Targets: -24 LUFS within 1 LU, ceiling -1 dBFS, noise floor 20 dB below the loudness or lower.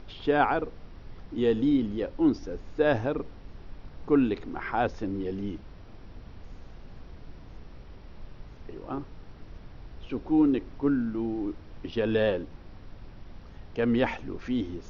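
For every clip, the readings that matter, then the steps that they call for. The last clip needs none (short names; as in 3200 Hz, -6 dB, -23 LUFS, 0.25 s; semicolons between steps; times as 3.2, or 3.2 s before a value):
noise floor -48 dBFS; noise floor target -49 dBFS; loudness -28.5 LUFS; peak -9.5 dBFS; loudness target -24.0 LUFS
-> noise print and reduce 6 dB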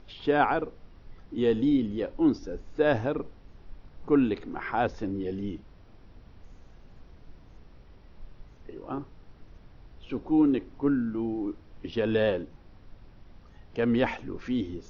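noise floor -54 dBFS; loudness -28.5 LUFS; peak -10.0 dBFS; loudness target -24.0 LUFS
-> gain +4.5 dB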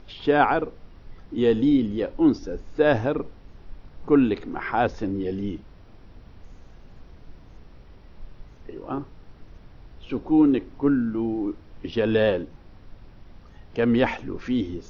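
loudness -24.0 LUFS; peak -5.5 dBFS; noise floor -49 dBFS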